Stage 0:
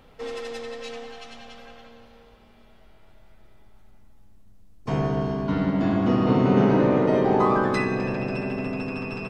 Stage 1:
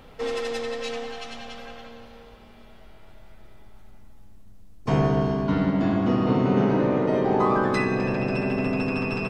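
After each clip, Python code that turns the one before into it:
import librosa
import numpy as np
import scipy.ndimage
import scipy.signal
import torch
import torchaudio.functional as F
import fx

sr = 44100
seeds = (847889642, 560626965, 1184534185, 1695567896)

y = fx.rider(x, sr, range_db=5, speed_s=2.0)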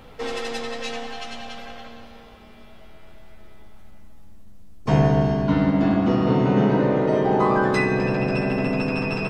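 y = fx.doubler(x, sr, ms=14.0, db=-7)
y = y * librosa.db_to_amplitude(2.0)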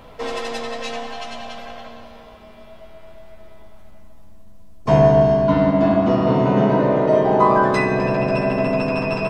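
y = fx.small_body(x, sr, hz=(650.0, 1000.0), ring_ms=45, db=11)
y = y * librosa.db_to_amplitude(1.0)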